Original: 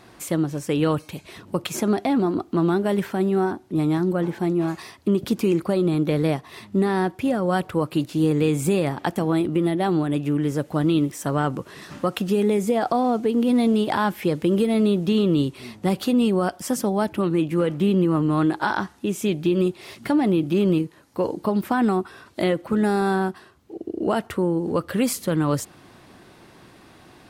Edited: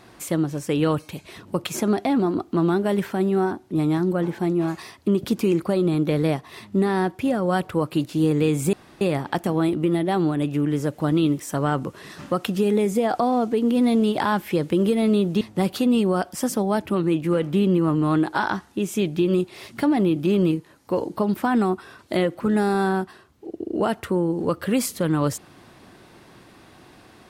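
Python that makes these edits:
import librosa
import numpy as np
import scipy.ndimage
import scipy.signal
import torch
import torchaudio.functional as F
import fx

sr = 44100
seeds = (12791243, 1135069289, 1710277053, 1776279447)

y = fx.edit(x, sr, fx.insert_room_tone(at_s=8.73, length_s=0.28),
    fx.cut(start_s=15.13, length_s=0.55), tone=tone)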